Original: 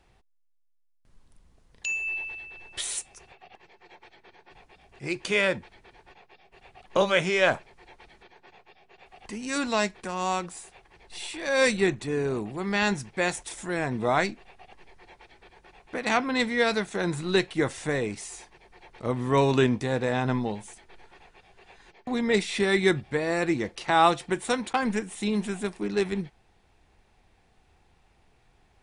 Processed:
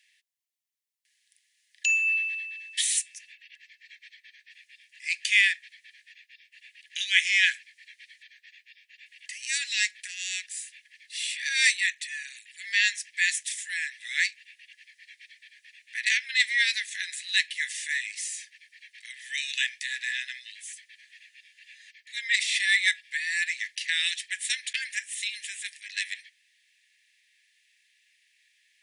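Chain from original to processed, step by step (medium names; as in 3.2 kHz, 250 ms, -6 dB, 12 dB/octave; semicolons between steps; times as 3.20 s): Chebyshev high-pass 1.7 kHz, order 8; trim +6.5 dB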